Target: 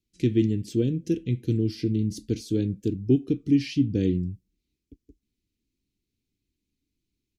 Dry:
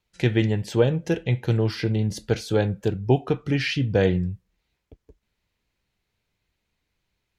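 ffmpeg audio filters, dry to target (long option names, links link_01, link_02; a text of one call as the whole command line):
ffmpeg -i in.wav -af "firequalizer=gain_entry='entry(170,0);entry(280,11);entry(610,-22);entry(900,-30);entry(2300,-8);entry(5400,0)':delay=0.05:min_phase=1,volume=-4dB" out.wav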